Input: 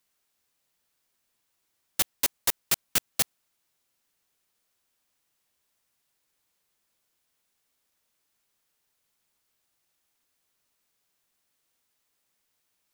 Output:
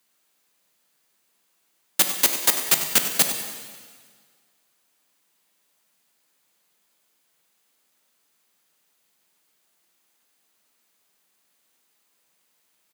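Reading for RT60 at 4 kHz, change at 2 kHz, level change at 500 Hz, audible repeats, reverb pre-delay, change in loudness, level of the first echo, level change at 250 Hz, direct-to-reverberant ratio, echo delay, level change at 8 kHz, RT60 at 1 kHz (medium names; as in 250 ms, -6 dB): 1.7 s, +8.0 dB, +8.0 dB, 2, 5 ms, +7.0 dB, -12.0 dB, +8.0 dB, 4.5 dB, 96 ms, +7.5 dB, 1.8 s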